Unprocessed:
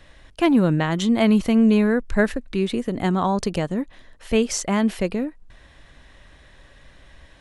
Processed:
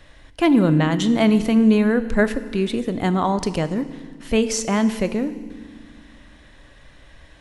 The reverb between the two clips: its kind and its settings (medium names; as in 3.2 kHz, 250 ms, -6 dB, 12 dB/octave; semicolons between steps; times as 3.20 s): FDN reverb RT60 1.6 s, low-frequency decay 1.55×, high-frequency decay 0.95×, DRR 11.5 dB; trim +1 dB